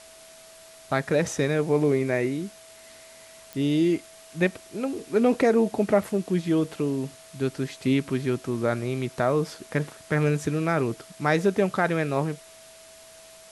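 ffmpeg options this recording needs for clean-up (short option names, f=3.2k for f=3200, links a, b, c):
-af "adeclick=t=4,bandreject=f=650:w=30,afwtdn=0.004"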